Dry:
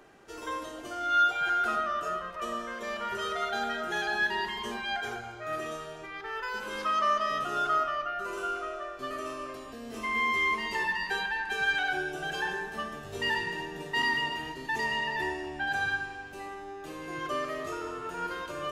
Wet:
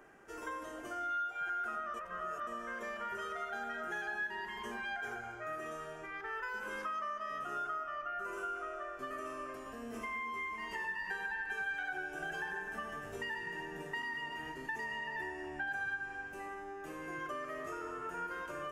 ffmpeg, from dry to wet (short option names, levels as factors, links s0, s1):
-filter_complex "[0:a]asettb=1/sr,asplit=3[s0][s1][s2];[s0]atrim=end=9.564[s3];[s1]atrim=start=9.56:end=13.12,asetpts=PTS-STARTPTS,afade=t=in:d=0.004:c=qsin,afade=t=out:st=3.556:d=0.004:c=qsin,aecho=1:1:98:0.501,atrim=end_sample=156996[s4];[s2]atrim=start=13.116[s5];[s3][s4]acrossfade=d=0.004:c1=hsin:c2=qsin[s6];[s6][s5]acrossfade=d=0.004:c1=qsin:c2=hsin,asplit=3[s7][s8][s9];[s7]atrim=end=1.942[s10];[s8]atrim=start=1.938:end=2.472,asetpts=PTS-STARTPTS,areverse[s11];[s9]atrim=start=2.468[s12];[s10][s11]acrossfade=d=0.004:c1=hsin:c2=hsin[s13];[s13][s12]acrossfade=d=0.004:c1=hsin:c2=hsin,acompressor=threshold=0.0178:ratio=6,equalizer=f=100:t=o:w=0.67:g=-4,equalizer=f=1600:t=o:w=0.67:g=5,equalizer=f=4000:t=o:w=0.67:g=-12,volume=0.631"